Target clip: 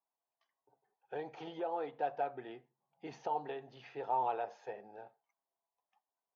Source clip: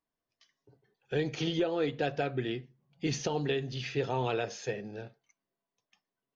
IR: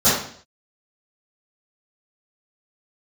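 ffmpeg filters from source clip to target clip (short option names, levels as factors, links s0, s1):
-af "bandpass=f=840:t=q:w=4.5:csg=0,volume=1.88"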